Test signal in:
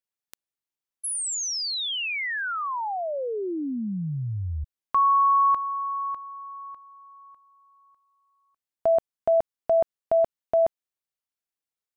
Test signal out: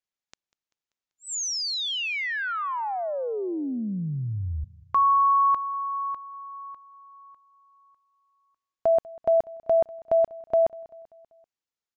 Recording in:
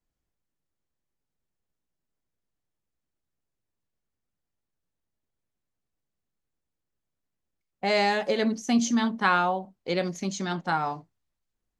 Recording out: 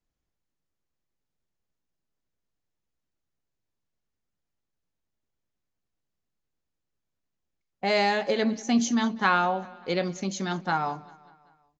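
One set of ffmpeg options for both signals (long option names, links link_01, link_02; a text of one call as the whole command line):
ffmpeg -i in.wav -filter_complex "[0:a]asplit=2[link_01][link_02];[link_02]aecho=0:1:194|388|582|776:0.0794|0.0437|0.024|0.0132[link_03];[link_01][link_03]amix=inputs=2:normalize=0,aresample=16000,aresample=44100" out.wav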